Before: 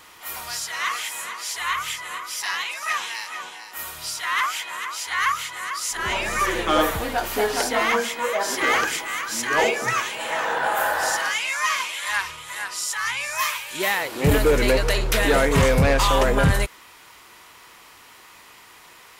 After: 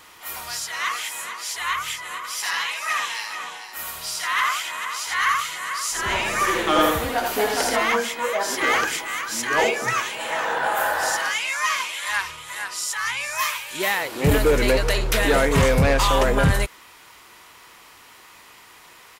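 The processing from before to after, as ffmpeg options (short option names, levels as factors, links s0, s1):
-filter_complex "[0:a]asplit=3[s0][s1][s2];[s0]afade=t=out:st=2.23:d=0.02[s3];[s1]aecho=1:1:82:0.668,afade=t=in:st=2.23:d=0.02,afade=t=out:st=7.75:d=0.02[s4];[s2]afade=t=in:st=7.75:d=0.02[s5];[s3][s4][s5]amix=inputs=3:normalize=0"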